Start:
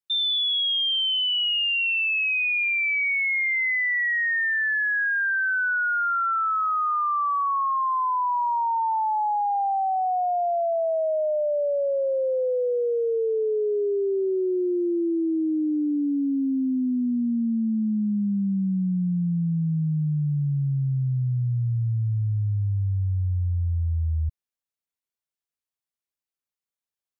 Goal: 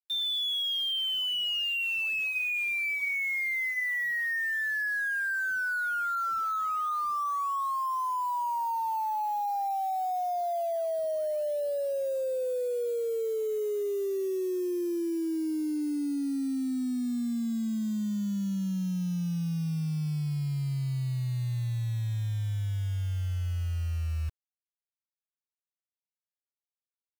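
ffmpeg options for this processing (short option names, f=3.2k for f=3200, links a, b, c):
-filter_complex "[0:a]asplit=3[a][b][c];[a]afade=t=out:st=1.83:d=0.02[d];[b]bandreject=f=253.3:t=h:w=4,bandreject=f=506.6:t=h:w=4,bandreject=f=759.9:t=h:w=4,bandreject=f=1.0132k:t=h:w=4,bandreject=f=1.2665k:t=h:w=4,bandreject=f=1.5198k:t=h:w=4,bandreject=f=1.7731k:t=h:w=4,bandreject=f=2.0264k:t=h:w=4,bandreject=f=2.2797k:t=h:w=4,bandreject=f=2.533k:t=h:w=4,bandreject=f=2.7863k:t=h:w=4,bandreject=f=3.0396k:t=h:w=4,bandreject=f=3.2929k:t=h:w=4,bandreject=f=3.5462k:t=h:w=4,bandreject=f=3.7995k:t=h:w=4,bandreject=f=4.0528k:t=h:w=4,bandreject=f=4.3061k:t=h:w=4,bandreject=f=4.5594k:t=h:w=4,bandreject=f=4.8127k:t=h:w=4,bandreject=f=5.066k:t=h:w=4,bandreject=f=5.3193k:t=h:w=4,bandreject=f=5.5726k:t=h:w=4,bandreject=f=5.8259k:t=h:w=4,bandreject=f=6.0792k:t=h:w=4,bandreject=f=6.3325k:t=h:w=4,bandreject=f=6.5858k:t=h:w=4,bandreject=f=6.8391k:t=h:w=4,bandreject=f=7.0924k:t=h:w=4,afade=t=in:st=1.83:d=0.02,afade=t=out:st=3.83:d=0.02[e];[c]afade=t=in:st=3.83:d=0.02[f];[d][e][f]amix=inputs=3:normalize=0,acrusher=bits=6:mix=0:aa=0.000001,volume=-6.5dB"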